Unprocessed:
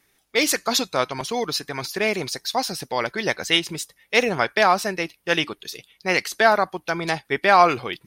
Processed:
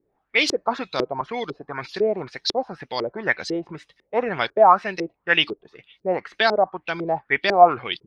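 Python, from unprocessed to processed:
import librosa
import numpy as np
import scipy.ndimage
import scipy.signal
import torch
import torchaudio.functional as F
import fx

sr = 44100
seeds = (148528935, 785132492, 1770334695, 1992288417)

y = fx.filter_lfo_lowpass(x, sr, shape='saw_up', hz=2.0, low_hz=360.0, high_hz=5000.0, q=3.8)
y = y * 10.0 ** (-4.0 / 20.0)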